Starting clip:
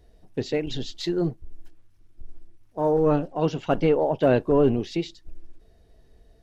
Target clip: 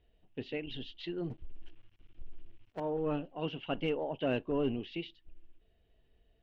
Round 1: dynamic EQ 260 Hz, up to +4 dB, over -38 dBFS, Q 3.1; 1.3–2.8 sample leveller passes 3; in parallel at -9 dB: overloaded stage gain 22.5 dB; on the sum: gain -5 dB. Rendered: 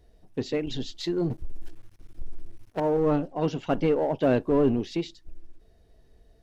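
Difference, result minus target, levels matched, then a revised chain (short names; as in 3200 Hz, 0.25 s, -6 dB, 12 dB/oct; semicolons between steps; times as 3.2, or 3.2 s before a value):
4000 Hz band -5.0 dB
dynamic EQ 260 Hz, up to +4 dB, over -38 dBFS, Q 3.1; ladder low-pass 3200 Hz, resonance 70%; 1.3–2.8 sample leveller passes 3; in parallel at -9 dB: overloaded stage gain 22.5 dB; on the sum: gain -5 dB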